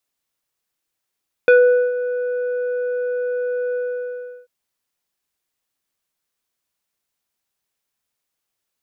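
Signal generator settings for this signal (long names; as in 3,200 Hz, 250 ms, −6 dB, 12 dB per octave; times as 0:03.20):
subtractive voice square B4 24 dB per octave, low-pass 1,200 Hz, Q 1.2, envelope 1 octave, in 0.12 s, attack 1.4 ms, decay 0.44 s, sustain −13 dB, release 0.72 s, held 2.27 s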